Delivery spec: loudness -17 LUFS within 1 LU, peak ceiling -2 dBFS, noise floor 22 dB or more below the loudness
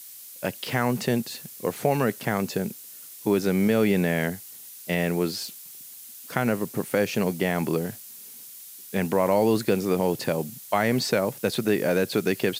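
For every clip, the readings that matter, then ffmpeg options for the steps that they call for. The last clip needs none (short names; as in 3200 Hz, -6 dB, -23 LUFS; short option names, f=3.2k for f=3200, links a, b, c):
noise floor -44 dBFS; noise floor target -48 dBFS; loudness -25.5 LUFS; peak -6.0 dBFS; loudness target -17.0 LUFS
-> -af "afftdn=nr=6:nf=-44"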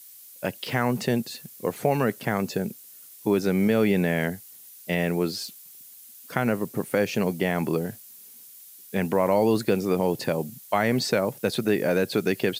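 noise floor -48 dBFS; loudness -25.5 LUFS; peak -6.5 dBFS; loudness target -17.0 LUFS
-> -af "volume=8.5dB,alimiter=limit=-2dB:level=0:latency=1"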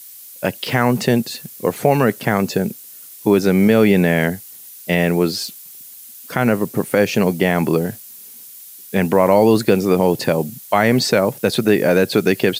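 loudness -17.0 LUFS; peak -2.0 dBFS; noise floor -39 dBFS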